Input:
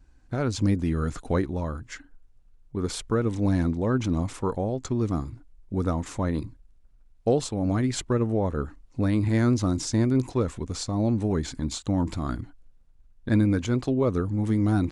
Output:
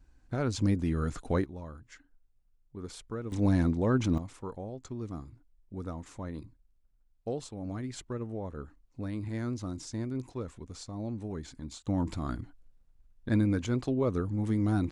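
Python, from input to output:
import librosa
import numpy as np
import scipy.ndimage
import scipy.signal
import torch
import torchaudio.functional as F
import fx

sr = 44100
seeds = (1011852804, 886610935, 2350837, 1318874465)

y = fx.gain(x, sr, db=fx.steps((0.0, -4.0), (1.44, -13.0), (3.32, -2.0), (4.18, -12.5), (11.87, -5.0)))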